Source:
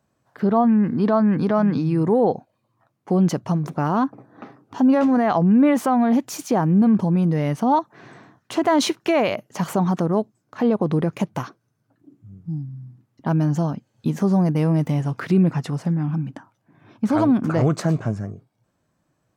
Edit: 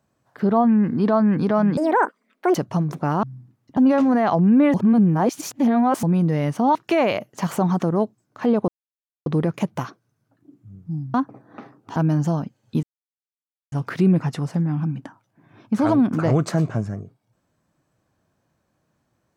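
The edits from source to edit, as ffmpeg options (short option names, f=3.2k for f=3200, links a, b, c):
-filter_complex "[0:a]asplit=13[a][b][c][d][e][f][g][h][i][j][k][l][m];[a]atrim=end=1.774[n];[b]atrim=start=1.77:end=3.3,asetpts=PTS-STARTPTS,asetrate=86436,aresample=44100[o];[c]atrim=start=3.296:end=3.982[p];[d]atrim=start=12.728:end=13.272[q];[e]atrim=start=4.798:end=5.772[r];[f]atrim=start=5.768:end=7.062,asetpts=PTS-STARTPTS,areverse[s];[g]atrim=start=7.058:end=7.782[t];[h]atrim=start=8.918:end=10.85,asetpts=PTS-STARTPTS,afade=t=out:st=1.928:d=0.004:c=hsin,apad=pad_dur=0.58[u];[i]atrim=start=10.85:end=12.732,asetpts=PTS-STARTPTS,afade=t=in:d=0.004:c=hsin[v];[j]atrim=start=3.978:end=4.802[w];[k]atrim=start=13.268:end=14.14,asetpts=PTS-STARTPTS,afade=t=out:st=0.868:d=0.004:c=hsin[x];[l]atrim=start=14.14:end=15.03,asetpts=PTS-STARTPTS,volume=0[y];[m]atrim=start=15.03,asetpts=PTS-STARTPTS,afade=t=in:d=0.004:c=hsin[z];[n][o]acrossfade=d=0.004:c1=hsin:c2=hsin[aa];[aa][p]acrossfade=d=0.004:c1=hsin:c2=hsin[ab];[ab][q]acrossfade=d=0.004:c1=hsin:c2=hsin[ac];[ac][r]acrossfade=d=0.004:c1=hsin:c2=hsin[ad];[ad][s]acrossfade=d=0.004:c1=hsin:c2=hsin[ae];[ae][t]acrossfade=d=0.004:c1=hsin:c2=hsin[af];[u][v]concat=n=2:v=0:a=1[ag];[af][ag]acrossfade=d=0.004:c1=hsin:c2=hsin[ah];[ah][w]acrossfade=d=0.004:c1=hsin:c2=hsin[ai];[x][y][z]concat=n=3:v=0:a=1[aj];[ai][aj]acrossfade=d=0.004:c1=hsin:c2=hsin"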